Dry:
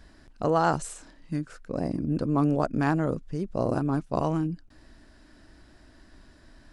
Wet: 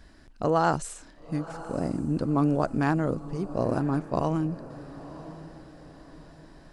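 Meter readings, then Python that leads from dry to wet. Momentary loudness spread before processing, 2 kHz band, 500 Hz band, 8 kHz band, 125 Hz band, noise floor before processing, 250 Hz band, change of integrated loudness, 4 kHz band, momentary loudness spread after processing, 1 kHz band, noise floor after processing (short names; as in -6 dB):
10 LU, 0.0 dB, 0.0 dB, n/a, 0.0 dB, -55 dBFS, 0.0 dB, 0.0 dB, 0.0 dB, 18 LU, 0.0 dB, -52 dBFS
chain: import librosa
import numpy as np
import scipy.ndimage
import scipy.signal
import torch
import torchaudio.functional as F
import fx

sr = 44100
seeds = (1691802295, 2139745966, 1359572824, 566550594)

y = fx.echo_diffused(x, sr, ms=991, feedback_pct=40, wet_db=-15.5)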